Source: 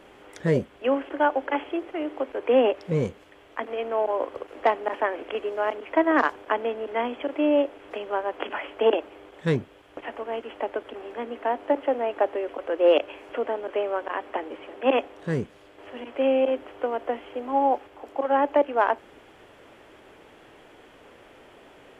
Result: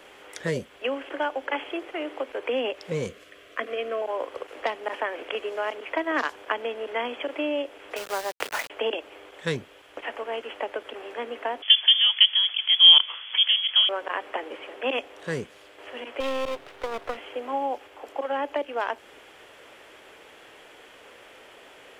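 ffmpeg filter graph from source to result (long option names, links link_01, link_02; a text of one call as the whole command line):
ffmpeg -i in.wav -filter_complex "[0:a]asettb=1/sr,asplit=3[link_01][link_02][link_03];[link_01]atrim=end=3.064[link_04];[link_02]atrim=start=3.06:end=4.02,asetpts=PTS-STARTPTS,afade=type=in:duration=0.004:curve=qsin,afade=type=out:start_time=0.956:duration=0.004:curve=qsin,asuperstop=centerf=870:order=4:qfactor=3,equalizer=frequency=180:width=0.54:gain=3[link_05];[link_03]atrim=start=4.016[link_06];[link_04][link_05]acrossfade=duration=0.004:curve1=hsin:curve2=qsin[link_07];[link_07][link_06]acrossfade=duration=0.004:curve1=qsin:curve2=hsin,asettb=1/sr,asplit=3[link_08][link_09][link_10];[link_08]atrim=end=7.964[link_11];[link_09]atrim=start=7.96:end=8.7,asetpts=PTS-STARTPTS,afade=type=in:duration=0.004:curve=qsin,afade=type=out:start_time=0.736:duration=0.004:curve=qsin,highpass=frequency=180:poles=1,adynamicsmooth=sensitivity=8:basefreq=720,aeval=exprs='val(0)*gte(abs(val(0)),0.0178)':channel_layout=same[link_12];[link_10]atrim=start=8.696[link_13];[link_11][link_12]acrossfade=duration=0.004:curve1=hsin:curve2=qsin[link_14];[link_14][link_13]acrossfade=duration=0.004:curve1=qsin:curve2=hsin,asettb=1/sr,asplit=3[link_15][link_16][link_17];[link_15]atrim=end=11.624[link_18];[link_16]atrim=start=11.62:end=13.89,asetpts=PTS-STARTPTS,afade=type=in:duration=0.004:curve=qsin,afade=type=out:start_time=2.266:duration=0.004:curve=qsin,highpass=140,lowpass=frequency=3100:width_type=q:width=0.5098,lowpass=frequency=3100:width_type=q:width=0.6013,lowpass=frequency=3100:width_type=q:width=0.9,lowpass=frequency=3100:width_type=q:width=2.563,afreqshift=-3700[link_19];[link_17]atrim=start=13.886[link_20];[link_18][link_19]acrossfade=duration=0.004:curve1=hsin:curve2=qsin[link_21];[link_21][link_20]acrossfade=duration=0.004:curve1=qsin:curve2=hsin,asettb=1/sr,asplit=3[link_22][link_23][link_24];[link_22]atrim=end=16.204[link_25];[link_23]atrim=start=16.2:end=17.17,asetpts=PTS-STARTPTS,afade=type=in:duration=0.004:curve=qsin,afade=type=out:start_time=0.966:duration=0.004:curve=qsin,equalizer=frequency=380:width_type=o:width=0.2:gain=5,aeval=exprs='max(val(0),0)':channel_layout=same[link_26];[link_24]atrim=start=17.166[link_27];[link_25][link_26]acrossfade=duration=0.004:curve1=hsin:curve2=qsin[link_28];[link_28][link_27]acrossfade=duration=0.004:curve1=qsin:curve2=hsin,equalizer=frequency=490:width_type=o:width=0.79:gain=5,acrossover=split=270|3000[link_29][link_30][link_31];[link_30]acompressor=threshold=-24dB:ratio=6[link_32];[link_29][link_32][link_31]amix=inputs=3:normalize=0,tiltshelf=frequency=900:gain=-7.5" out.wav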